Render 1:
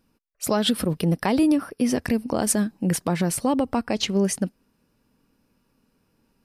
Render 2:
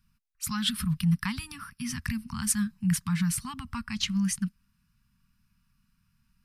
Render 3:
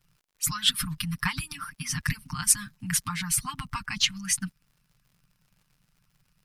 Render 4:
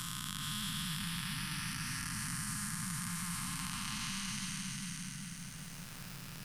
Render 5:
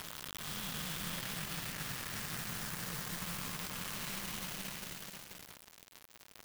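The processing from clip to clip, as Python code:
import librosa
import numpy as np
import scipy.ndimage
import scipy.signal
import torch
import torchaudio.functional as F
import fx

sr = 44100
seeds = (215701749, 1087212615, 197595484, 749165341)

y1 = scipy.signal.sosfilt(scipy.signal.cheby2(4, 50, [330.0, 670.0], 'bandstop', fs=sr, output='sos'), x)
y1 = fx.low_shelf(y1, sr, hz=120.0, db=8.0)
y1 = y1 * 10.0 ** (-3.5 / 20.0)
y2 = fx.hpss(y1, sr, part='harmonic', gain_db=-18)
y2 = y2 + 0.96 * np.pad(y2, (int(6.6 * sr / 1000.0), 0))[:len(y2)]
y2 = fx.dmg_crackle(y2, sr, seeds[0], per_s=110.0, level_db=-56.0)
y2 = y2 * 10.0 ** (4.0 / 20.0)
y3 = fx.spec_blur(y2, sr, span_ms=746.0)
y3 = fx.echo_feedback(y3, sr, ms=402, feedback_pct=23, wet_db=-6.0)
y3 = fx.band_squash(y3, sr, depth_pct=100)
y3 = y3 * 10.0 ** (-2.0 / 20.0)
y4 = fx.quant_dither(y3, sr, seeds[1], bits=6, dither='none')
y4 = y4 + 10.0 ** (-5.5 / 20.0) * np.pad(y4, (int(484 * sr / 1000.0), 0))[:len(y4)]
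y4 = fx.clock_jitter(y4, sr, seeds[2], jitter_ms=0.035)
y4 = y4 * 10.0 ** (-3.0 / 20.0)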